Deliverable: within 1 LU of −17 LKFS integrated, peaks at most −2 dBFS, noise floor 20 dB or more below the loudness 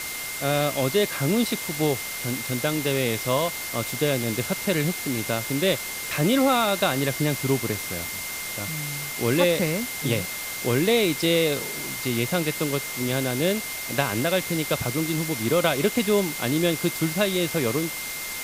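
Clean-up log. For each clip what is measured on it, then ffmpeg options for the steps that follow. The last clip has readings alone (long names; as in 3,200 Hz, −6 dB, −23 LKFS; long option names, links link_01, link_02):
interfering tone 2,100 Hz; level of the tone −35 dBFS; background noise floor −33 dBFS; target noise floor −44 dBFS; integrated loudness −24.0 LKFS; sample peak −5.5 dBFS; target loudness −17.0 LKFS
→ -af "bandreject=frequency=2100:width=30"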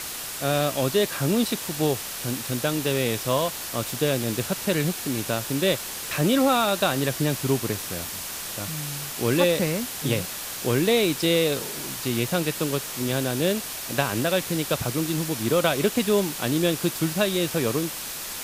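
interfering tone none found; background noise floor −34 dBFS; target noise floor −45 dBFS
→ -af "afftdn=noise_reduction=11:noise_floor=-34"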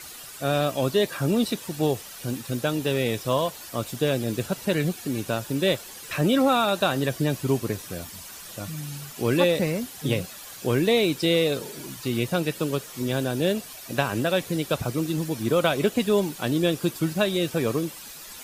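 background noise floor −42 dBFS; target noise floor −46 dBFS
→ -af "afftdn=noise_reduction=6:noise_floor=-42"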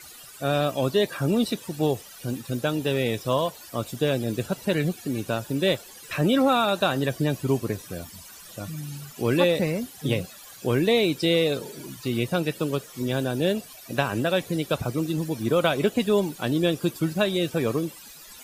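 background noise floor −46 dBFS; integrated loudness −25.5 LKFS; sample peak −6.5 dBFS; target loudness −17.0 LKFS
→ -af "volume=8.5dB,alimiter=limit=-2dB:level=0:latency=1"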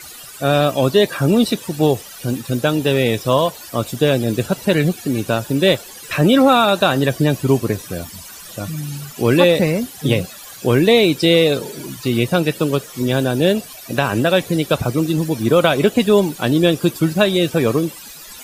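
integrated loudness −17.0 LKFS; sample peak −2.0 dBFS; background noise floor −37 dBFS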